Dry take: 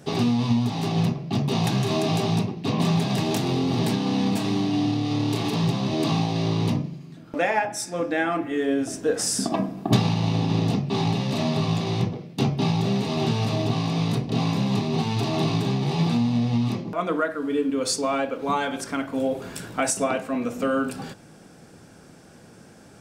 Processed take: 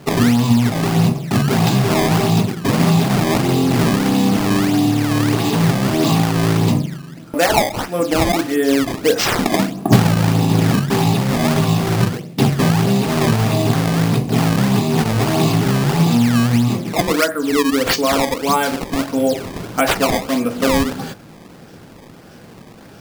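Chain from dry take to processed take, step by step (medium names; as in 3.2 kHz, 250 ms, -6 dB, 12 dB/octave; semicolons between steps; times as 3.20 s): decimation with a swept rate 18×, swing 160% 1.6 Hz; peaking EQ 4.8 kHz +2.5 dB 0.26 oct; trim +8 dB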